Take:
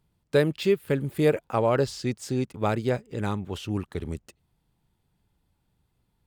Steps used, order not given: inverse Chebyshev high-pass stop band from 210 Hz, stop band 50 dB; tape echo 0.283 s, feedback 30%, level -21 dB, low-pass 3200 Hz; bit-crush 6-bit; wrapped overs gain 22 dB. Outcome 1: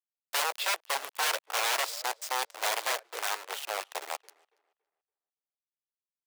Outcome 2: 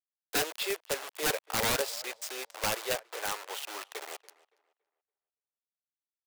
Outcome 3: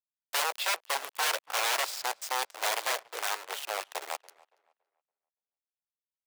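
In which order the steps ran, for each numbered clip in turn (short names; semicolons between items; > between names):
bit-crush > tape echo > wrapped overs > inverse Chebyshev high-pass; bit-crush > inverse Chebyshev high-pass > tape echo > wrapped overs; bit-crush > wrapped overs > inverse Chebyshev high-pass > tape echo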